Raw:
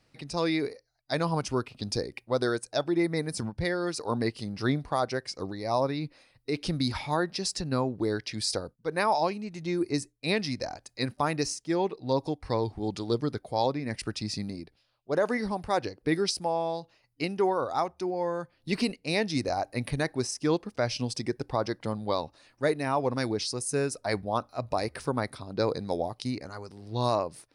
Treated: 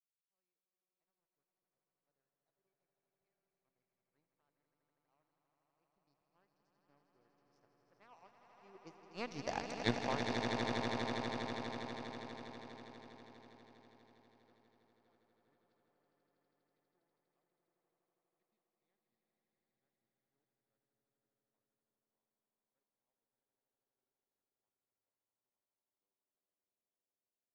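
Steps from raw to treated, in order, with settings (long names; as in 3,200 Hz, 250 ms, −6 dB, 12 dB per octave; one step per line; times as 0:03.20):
source passing by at 0:09.65, 37 m/s, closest 1.9 metres
power curve on the samples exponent 2
high-frequency loss of the air 140 metres
echo that builds up and dies away 81 ms, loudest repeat 8, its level −7 dB
level +15 dB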